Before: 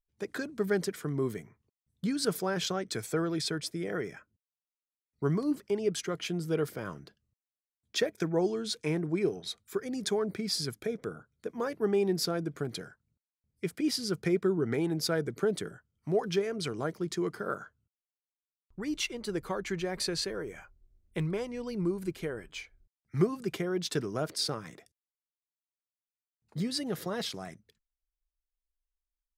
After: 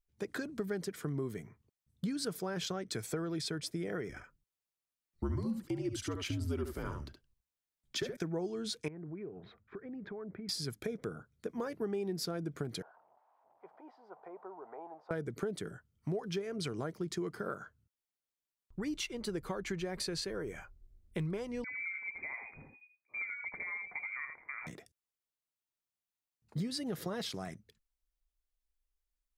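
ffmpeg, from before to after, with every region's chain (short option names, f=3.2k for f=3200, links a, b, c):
-filter_complex "[0:a]asettb=1/sr,asplit=3[a][b][c];[a]atrim=end=4.094[d];[b]atrim=start=4.09:end=8.17,asetpts=PTS-STARTPTS,afade=t=in:d=0.004:c=qsin,afade=t=out:st=4.076:d=0.004:c=qsin,afreqshift=-71,aecho=1:1:71:0.447,atrim=end_sample=179928[e];[c]atrim=start=8.166[f];[d][e]acrossfade=d=0.004:c1=hsin:c2=qsin[g];[g][f]acrossfade=d=0.004:c1=qsin:c2=hsin,asettb=1/sr,asplit=3[h][i][j];[h]atrim=end=8.884[k];[i]atrim=start=8.88:end=10.49,asetpts=PTS-STARTPTS,afade=t=in:d=0.004:c=qsin,afade=t=out:st=1.606:d=0.004:c=qsin,lowpass=f=2k:w=0.5412,lowpass=f=2k:w=1.3066,acompressor=threshold=-47dB:ratio=3:attack=3.2:release=140:knee=1:detection=peak[l];[j]atrim=start=10.486[m];[k][l]acrossfade=d=0.004:c1=hsin:c2=qsin[n];[n][m]acrossfade=d=0.004:c1=qsin:c2=hsin,asettb=1/sr,asplit=3[o][p][q];[o]atrim=end=12.824[r];[p]atrim=start=12.82:end=15.11,asetpts=PTS-STARTPTS,afade=t=in:d=0.004:c=qsin,afade=t=out:st=2.286:d=0.004:c=qsin,aeval=exprs='val(0)+0.5*0.0075*sgn(val(0))':c=same,asuperpass=centerf=810:order=4:qfactor=2.3[s];[q]atrim=start=15.106[t];[r][s]acrossfade=d=0.004:c1=hsin:c2=qsin[u];[u][t]acrossfade=d=0.004:c1=qsin:c2=hsin,asettb=1/sr,asplit=3[v][w][x];[v]atrim=end=21.644[y];[w]atrim=start=21.64:end=24.67,asetpts=PTS-STARTPTS,afade=t=in:d=0.004:c=qsin,afade=t=out:st=3.026:d=0.004:c=qsin,acompressor=threshold=-43dB:ratio=2:attack=3.2:release=140:knee=1:detection=peak,aecho=1:1:80:0.473,atrim=end_sample=133623,lowpass=f=2.1k:t=q:w=0.5098,lowpass=f=2.1k:t=q:w=0.6013,lowpass=f=2.1k:t=q:w=0.9,lowpass=f=2.1k:t=q:w=2.563,afreqshift=-2500[z];[x]atrim=start=24.666[aa];[y][z]acrossfade=d=0.004:c1=hsin:c2=qsin[ab];[ab][aa]acrossfade=d=0.004:c1=qsin:c2=hsin,acompressor=threshold=-36dB:ratio=4,lowshelf=f=230:g=4"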